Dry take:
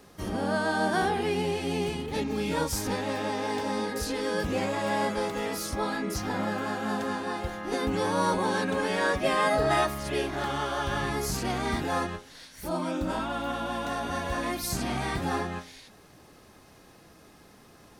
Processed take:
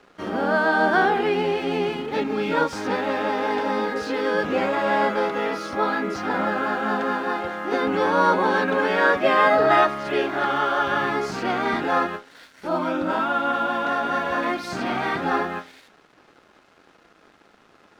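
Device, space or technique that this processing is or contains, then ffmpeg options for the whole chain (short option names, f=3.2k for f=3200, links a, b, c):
pocket radio on a weak battery: -filter_complex "[0:a]highpass=250,lowpass=3k,aeval=exprs='sgn(val(0))*max(abs(val(0))-0.00126,0)':c=same,equalizer=f=1.4k:t=o:w=0.23:g=7,asettb=1/sr,asplit=3[a][b][c];[a]atrim=end=5.274[d];[b]atrim=start=5.27:end=6.05,asetpts=PTS-STARTPTS,afade=t=in:d=0.004:c=qsin,afade=t=out:st=0.776:d=0.004:c=qsin,bandreject=f=7.7k:w=11[e];[c]atrim=start=6.046[f];[d][e]acrossfade=d=0.004:c1=hsin:c2=qsin[g];[g][f]acrossfade=d=0.004:c1=qsin:c2=hsin,volume=7.5dB"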